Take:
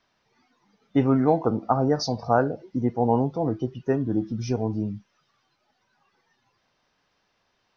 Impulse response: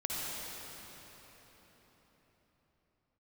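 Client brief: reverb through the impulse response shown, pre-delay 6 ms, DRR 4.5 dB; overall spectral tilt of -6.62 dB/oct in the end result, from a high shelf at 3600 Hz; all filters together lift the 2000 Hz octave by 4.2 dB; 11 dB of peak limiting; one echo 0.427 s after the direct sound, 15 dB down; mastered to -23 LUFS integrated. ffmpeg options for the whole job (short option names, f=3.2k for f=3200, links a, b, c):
-filter_complex "[0:a]equalizer=f=2k:t=o:g=7.5,highshelf=f=3.6k:g=-5.5,alimiter=limit=-16.5dB:level=0:latency=1,aecho=1:1:427:0.178,asplit=2[a][b];[1:a]atrim=start_sample=2205,adelay=6[c];[b][c]afir=irnorm=-1:irlink=0,volume=-10dB[d];[a][d]amix=inputs=2:normalize=0,volume=4.5dB"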